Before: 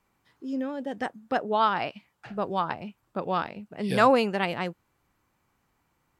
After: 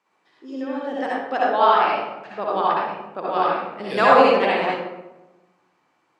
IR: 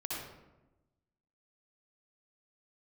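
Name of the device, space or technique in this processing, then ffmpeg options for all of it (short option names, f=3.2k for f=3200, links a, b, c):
supermarket ceiling speaker: -filter_complex "[0:a]highpass=340,lowpass=6.2k[a];[1:a]atrim=start_sample=2205[b];[a][b]afir=irnorm=-1:irlink=0,volume=5.5dB"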